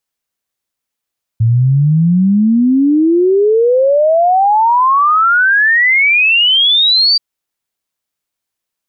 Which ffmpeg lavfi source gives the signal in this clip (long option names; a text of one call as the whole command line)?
ffmpeg -f lavfi -i "aevalsrc='0.447*clip(min(t,5.78-t)/0.01,0,1)*sin(2*PI*110*5.78/log(4700/110)*(exp(log(4700/110)*t/5.78)-1))':duration=5.78:sample_rate=44100" out.wav